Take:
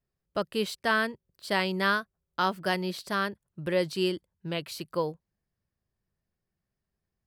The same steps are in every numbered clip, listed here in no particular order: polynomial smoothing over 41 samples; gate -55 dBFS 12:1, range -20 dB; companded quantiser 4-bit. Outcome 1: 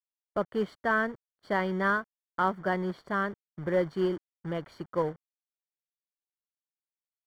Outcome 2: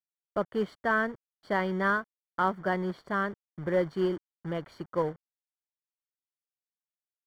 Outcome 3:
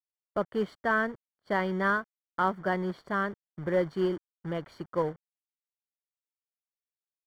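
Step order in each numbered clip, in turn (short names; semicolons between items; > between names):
companded quantiser > gate > polynomial smoothing; gate > companded quantiser > polynomial smoothing; companded quantiser > polynomial smoothing > gate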